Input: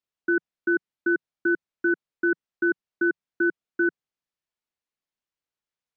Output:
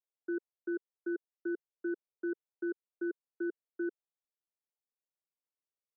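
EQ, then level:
four-pole ladder high-pass 340 Hz, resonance 40%
low-pass filter 1,100 Hz 24 dB per octave
−3.0 dB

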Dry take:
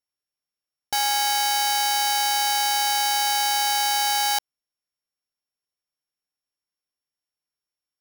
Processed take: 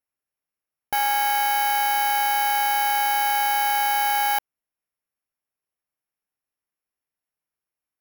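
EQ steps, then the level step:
flat-topped bell 5,600 Hz −13.5 dB
+2.5 dB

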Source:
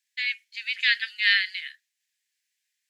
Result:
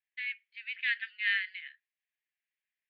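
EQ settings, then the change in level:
high-pass filter 990 Hz
low-pass filter 2,700 Hz 24 dB per octave
−7.0 dB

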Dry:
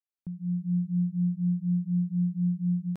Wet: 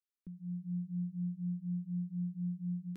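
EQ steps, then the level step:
phaser with its sweep stopped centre 310 Hz, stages 4
−4.0 dB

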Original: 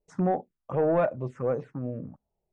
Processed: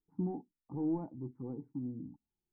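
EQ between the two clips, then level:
formant resonators in series u
parametric band 590 Hz +3 dB 0.4 octaves
phaser with its sweep stopped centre 1,400 Hz, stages 4
+4.0 dB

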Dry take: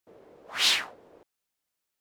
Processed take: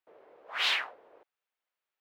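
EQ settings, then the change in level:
three-way crossover with the lows and the highs turned down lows −19 dB, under 420 Hz, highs −21 dB, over 3,300 Hz
high-shelf EQ 11,000 Hz +10 dB
0.0 dB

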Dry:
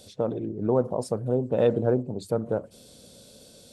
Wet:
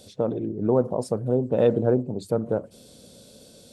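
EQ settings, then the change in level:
parametric band 250 Hz +3 dB 2.5 octaves
0.0 dB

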